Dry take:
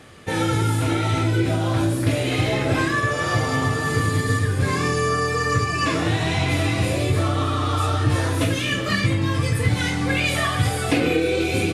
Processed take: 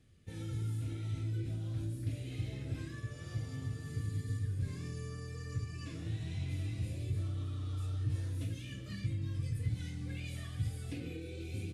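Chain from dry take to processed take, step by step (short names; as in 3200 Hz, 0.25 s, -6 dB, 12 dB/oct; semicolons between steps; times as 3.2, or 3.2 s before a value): passive tone stack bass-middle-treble 10-0-1; gain -3 dB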